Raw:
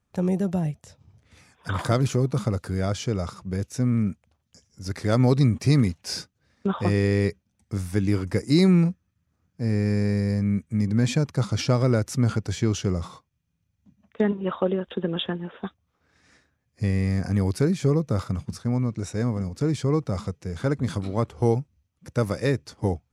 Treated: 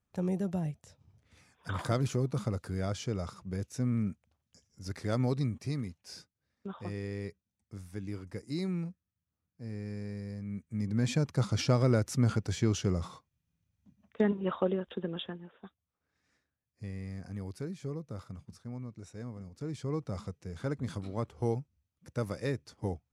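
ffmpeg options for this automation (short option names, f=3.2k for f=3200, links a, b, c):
-af "volume=10.5dB,afade=t=out:st=4.86:d=0.92:silence=0.375837,afade=t=in:st=10.46:d=0.89:silence=0.266073,afade=t=out:st=14.55:d=0.99:silence=0.251189,afade=t=in:st=19.5:d=0.59:silence=0.446684"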